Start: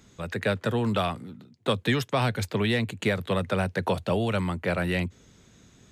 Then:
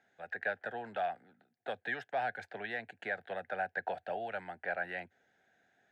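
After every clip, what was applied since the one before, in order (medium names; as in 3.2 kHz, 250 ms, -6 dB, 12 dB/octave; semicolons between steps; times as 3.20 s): two resonant band-passes 1.1 kHz, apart 1.1 oct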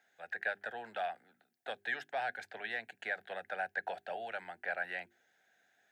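tilt EQ +2.5 dB/octave; hum notches 50/100/150/200/250/300/350/400 Hz; trim -1.5 dB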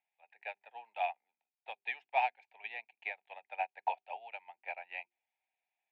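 two resonant band-passes 1.5 kHz, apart 1.4 oct; upward expansion 2.5:1, over -58 dBFS; trim +17.5 dB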